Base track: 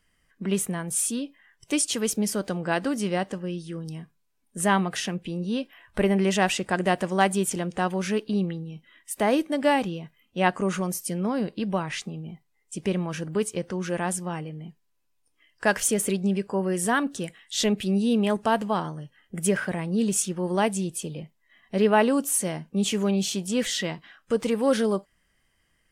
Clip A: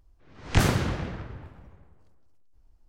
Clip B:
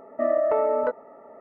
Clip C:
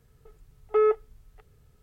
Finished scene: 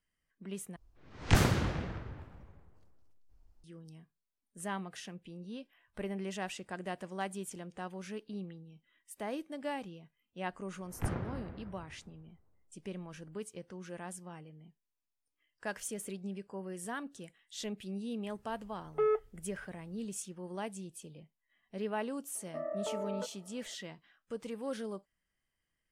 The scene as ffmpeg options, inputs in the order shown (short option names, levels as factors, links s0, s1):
-filter_complex "[1:a]asplit=2[s0][s1];[0:a]volume=0.15[s2];[s1]lowpass=1500[s3];[s2]asplit=2[s4][s5];[s4]atrim=end=0.764[s6];[s0]atrim=end=2.88,asetpts=PTS-STARTPTS,volume=0.631[s7];[s5]atrim=start=3.636[s8];[s3]atrim=end=2.88,asetpts=PTS-STARTPTS,volume=0.211,afade=t=in:d=0.004:c=hsin,afade=t=out:st=2.876:d=0.004:c=hsin,adelay=10470[s9];[3:a]atrim=end=1.82,asetpts=PTS-STARTPTS,volume=0.398,afade=t=in:d=0.004:c=hsin,afade=t=out:st=1.816:d=0.004:c=hsin,adelay=18240[s10];[2:a]atrim=end=1.4,asetpts=PTS-STARTPTS,volume=0.158,afade=t=in:d=0.004:c=hsin,afade=t=out:st=1.396:d=0.004:c=hsin,adelay=22350[s11];[s6][s7]acrossfade=d=0.004:c1=hsin:c2=hsin[s12];[s12][s8]acrossfade=d=0.004:c1=hsin:c2=hsin[s13];[s13][s9][s10][s11]amix=inputs=4:normalize=0"